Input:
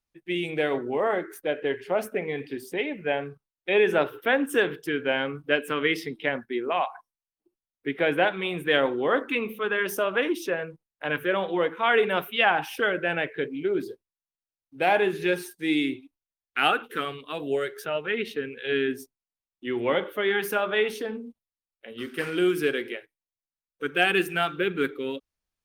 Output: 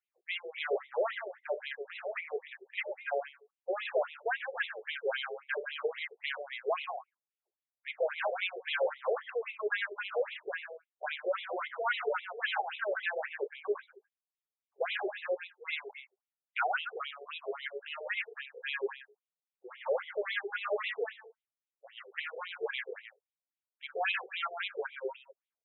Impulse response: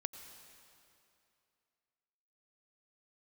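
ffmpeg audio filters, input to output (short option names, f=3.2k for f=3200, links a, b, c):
-filter_complex "[0:a]asettb=1/sr,asplit=3[a][b][c];[a]atrim=end=20.644[d];[b]atrim=start=20.64:end=21.15,asetpts=PTS-STARTPTS,afade=t=in:d=0.004:c=qsin,afade=t=out:st=0.506:d=0.004:c=qsin,aeval=exprs='val(0)+0.5*0.0237*sgn(val(0))':c=same[e];[c]atrim=start=21.146[f];[d][e]acrossfade=d=0.004:c1=hsin:c2=qsin[g];[g][f]acrossfade=d=0.004:c1=qsin:c2=hsin,highpass=f=63:w=0.5412,highpass=f=63:w=1.3066,aecho=1:1:134:0.237,volume=23dB,asoftclip=hard,volume=-23dB,afftfilt=real='re*between(b*sr/1024,530*pow(2900/530,0.5+0.5*sin(2*PI*3.7*pts/sr))/1.41,530*pow(2900/530,0.5+0.5*sin(2*PI*3.7*pts/sr))*1.41)':imag='im*between(b*sr/1024,530*pow(2900/530,0.5+0.5*sin(2*PI*3.7*pts/sr))/1.41,530*pow(2900/530,0.5+0.5*sin(2*PI*3.7*pts/sr))*1.41)':win_size=1024:overlap=0.75"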